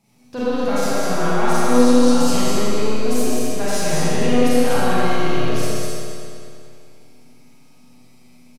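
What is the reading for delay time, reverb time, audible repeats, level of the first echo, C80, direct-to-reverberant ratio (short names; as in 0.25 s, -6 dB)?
0.203 s, 2.5 s, 1, -2.0 dB, -6.5 dB, -12.5 dB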